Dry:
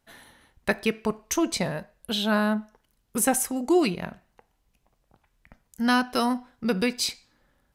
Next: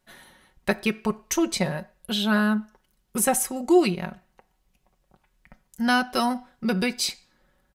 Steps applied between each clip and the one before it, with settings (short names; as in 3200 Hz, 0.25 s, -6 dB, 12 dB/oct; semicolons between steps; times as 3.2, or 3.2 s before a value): comb 5.4 ms, depth 53%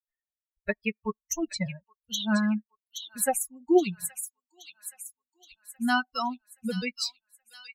per-bin expansion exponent 3; thin delay 0.823 s, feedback 49%, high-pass 3400 Hz, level -5 dB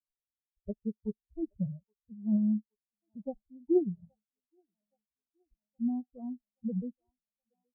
Gaussian blur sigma 21 samples